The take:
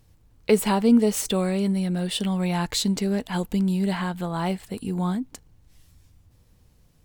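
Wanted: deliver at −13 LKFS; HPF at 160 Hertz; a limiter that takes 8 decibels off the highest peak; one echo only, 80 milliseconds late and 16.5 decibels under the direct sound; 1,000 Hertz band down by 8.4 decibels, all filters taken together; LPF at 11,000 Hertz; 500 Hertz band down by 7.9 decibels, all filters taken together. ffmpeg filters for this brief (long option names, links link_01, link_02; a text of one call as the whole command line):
ffmpeg -i in.wav -af "highpass=160,lowpass=11000,equalizer=frequency=500:width_type=o:gain=-8.5,equalizer=frequency=1000:width_type=o:gain=-7.5,alimiter=limit=-20.5dB:level=0:latency=1,aecho=1:1:80:0.15,volume=16dB" out.wav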